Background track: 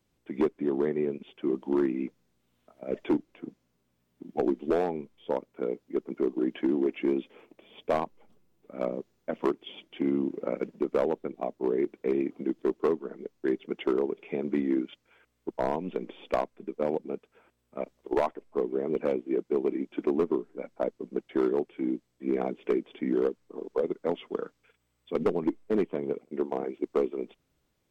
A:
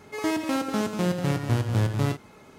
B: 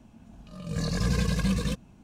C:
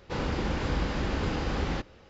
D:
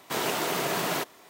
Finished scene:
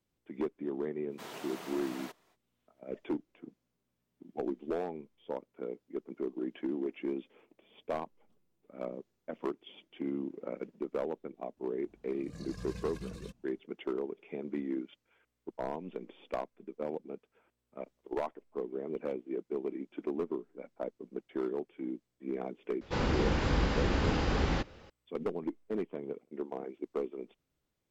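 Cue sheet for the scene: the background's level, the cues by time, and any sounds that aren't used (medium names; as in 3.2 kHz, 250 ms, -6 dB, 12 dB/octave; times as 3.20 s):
background track -8.5 dB
1.08 s: add D -16.5 dB, fades 0.05 s + treble shelf 9.3 kHz -7 dB
11.57 s: add B -18 dB
22.81 s: add C
not used: A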